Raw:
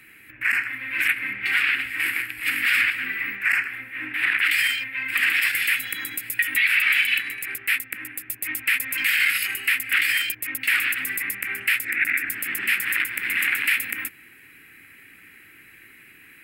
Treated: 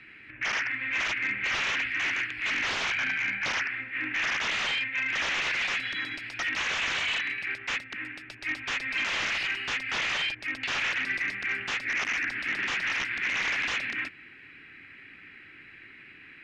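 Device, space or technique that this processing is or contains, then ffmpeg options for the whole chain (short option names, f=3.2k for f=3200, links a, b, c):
synthesiser wavefolder: -filter_complex "[0:a]asettb=1/sr,asplit=3[a][b][c];[a]atrim=end=2.704[d];[b]atrim=start=2.7:end=3.53,asetpts=PTS-STARTPTS,afade=t=in:d=0.004:c=qsin,afade=t=out:st=0.826:d=0.004:c=qsin,aecho=1:1:1.3:0.66,atrim=end_sample=36603[e];[c]atrim=start=3.526[f];[d][e]acrossfade=d=0.004:c1=hsin:c2=qsin[g];[g][f]acrossfade=d=0.004:c1=qsin:c2=hsin,aeval=exprs='0.075*(abs(mod(val(0)/0.075+3,4)-2)-1)':c=same,lowpass=f=4.7k:w=0.5412,lowpass=f=4.7k:w=1.3066"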